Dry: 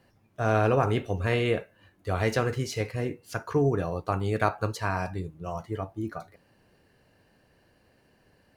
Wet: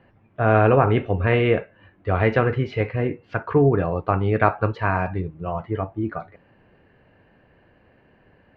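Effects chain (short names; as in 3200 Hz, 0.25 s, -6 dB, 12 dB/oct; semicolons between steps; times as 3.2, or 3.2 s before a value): LPF 2700 Hz 24 dB/oct; gain +7 dB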